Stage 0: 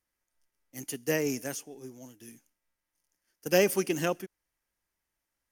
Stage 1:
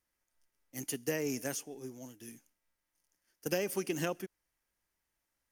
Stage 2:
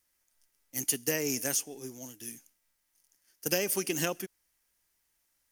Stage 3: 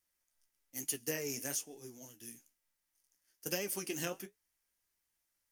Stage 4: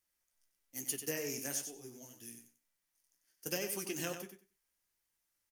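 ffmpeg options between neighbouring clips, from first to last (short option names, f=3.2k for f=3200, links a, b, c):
-af "acompressor=threshold=-30dB:ratio=6"
-af "highshelf=f=2.8k:g=10,volume=1.5dB"
-af "flanger=delay=8.8:depth=8.9:regen=-45:speed=1.1:shape=triangular,volume=-3.5dB"
-af "aecho=1:1:94|188|282:0.398|0.0677|0.0115,volume=-1dB"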